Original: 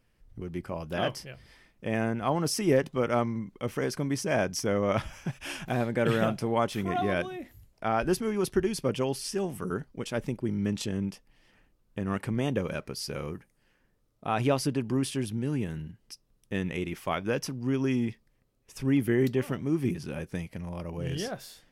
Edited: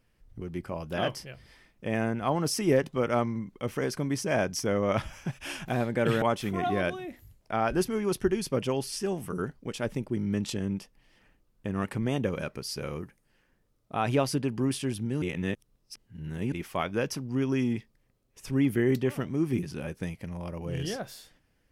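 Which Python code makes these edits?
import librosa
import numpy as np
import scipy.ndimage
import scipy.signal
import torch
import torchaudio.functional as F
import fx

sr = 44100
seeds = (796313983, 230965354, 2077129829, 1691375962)

y = fx.edit(x, sr, fx.cut(start_s=6.22, length_s=0.32),
    fx.reverse_span(start_s=15.54, length_s=1.3), tone=tone)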